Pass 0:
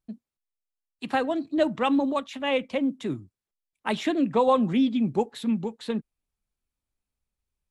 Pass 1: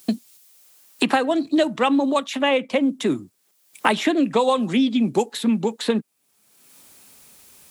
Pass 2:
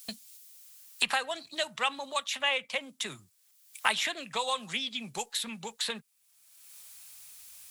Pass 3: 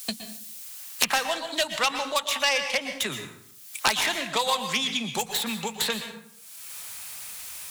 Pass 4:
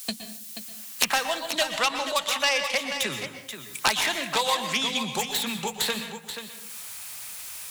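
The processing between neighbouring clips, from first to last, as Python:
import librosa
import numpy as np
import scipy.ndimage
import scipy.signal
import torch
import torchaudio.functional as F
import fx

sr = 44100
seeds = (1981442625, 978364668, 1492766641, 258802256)

y1 = scipy.signal.sosfilt(scipy.signal.butter(2, 200.0, 'highpass', fs=sr, output='sos'), x)
y1 = fx.high_shelf(y1, sr, hz=5100.0, db=9.5)
y1 = fx.band_squash(y1, sr, depth_pct=100)
y1 = F.gain(torch.from_numpy(y1), 5.5).numpy()
y2 = fx.tone_stack(y1, sr, knobs='10-0-10')
y3 = fx.self_delay(y2, sr, depth_ms=0.22)
y3 = fx.rev_plate(y3, sr, seeds[0], rt60_s=0.6, hf_ratio=0.7, predelay_ms=105, drr_db=8.0)
y3 = fx.band_squash(y3, sr, depth_pct=40)
y3 = F.gain(torch.from_numpy(y3), 7.0).numpy()
y4 = y3 + 10.0 ** (-9.5 / 20.0) * np.pad(y3, (int(482 * sr / 1000.0), 0))[:len(y3)]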